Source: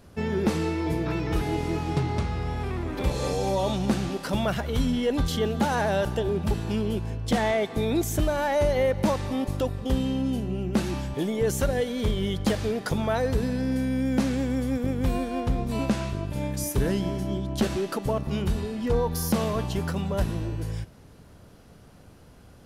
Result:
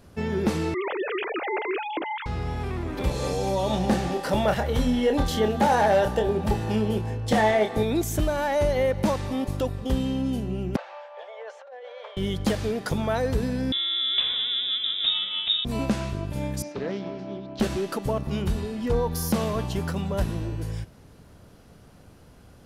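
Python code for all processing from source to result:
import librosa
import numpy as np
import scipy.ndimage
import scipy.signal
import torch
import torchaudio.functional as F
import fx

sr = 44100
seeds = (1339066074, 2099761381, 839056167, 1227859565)

y = fx.chain(x, sr, fx.sine_speech(),
    fx.tilt_eq(slope=3.0), at=(0.74, 2.26))
y = fx.chain(y, sr, fx.doubler(ms=28.0, db=-7.0),
    fx.small_body(hz=(550.0, 800.0, 1800.0), ring_ms=20, db=8),
    fx.clip_hard(threshold_db=-14.0), at=(3.7, 7.83))
y = fx.chain(y, sr, fx.steep_highpass(hz=520.0, slope=72),
    fx.spacing_loss(db_at_10k=43),
    fx.over_compress(threshold_db=-39.0, ratio=-1.0), at=(10.76, 12.17))
y = fx.chain(y, sr, fx.peak_eq(hz=110.0, db=-12.5, octaves=0.6),
    fx.freq_invert(carrier_hz=3700), at=(13.72, 15.65))
y = fx.chain(y, sr, fx.cabinet(low_hz=260.0, low_slope=12, high_hz=4300.0, hz=(340.0, 970.0, 1800.0, 3200.0), db=(-5, -5, -4, -8)),
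    fx.doppler_dist(depth_ms=0.16), at=(16.62, 17.6))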